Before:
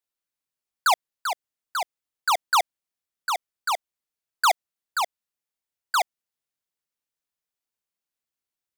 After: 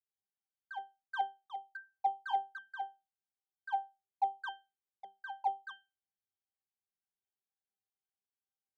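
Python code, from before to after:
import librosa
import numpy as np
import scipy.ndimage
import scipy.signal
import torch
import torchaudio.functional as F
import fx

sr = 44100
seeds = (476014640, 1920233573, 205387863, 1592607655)

y = fx.block_reorder(x, sr, ms=136.0, group=5)
y = fx.peak_eq(y, sr, hz=760.0, db=6.5, octaves=1.0)
y = fx.level_steps(y, sr, step_db=9)
y = fx.wow_flutter(y, sr, seeds[0], rate_hz=2.1, depth_cents=19.0)
y = fx.octave_resonator(y, sr, note='G', decay_s=0.25)
y = fx.dynamic_eq(y, sr, hz=420.0, q=1.7, threshold_db=-51.0, ratio=4.0, max_db=4)
y = y * librosa.db_to_amplitude(3.0)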